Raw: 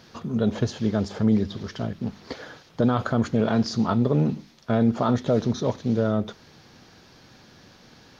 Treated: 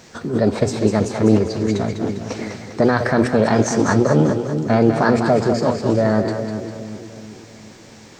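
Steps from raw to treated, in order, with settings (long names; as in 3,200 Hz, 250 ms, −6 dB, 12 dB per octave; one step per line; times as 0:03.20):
mains-hum notches 60/120 Hz
formants moved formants +4 semitones
echo with a time of its own for lows and highs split 440 Hz, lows 375 ms, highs 200 ms, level −7 dB
level +6 dB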